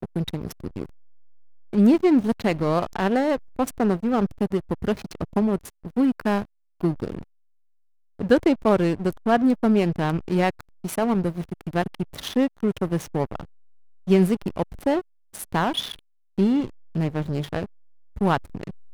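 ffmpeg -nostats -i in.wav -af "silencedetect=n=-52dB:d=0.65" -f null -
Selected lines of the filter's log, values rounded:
silence_start: 7.24
silence_end: 8.19 | silence_duration: 0.96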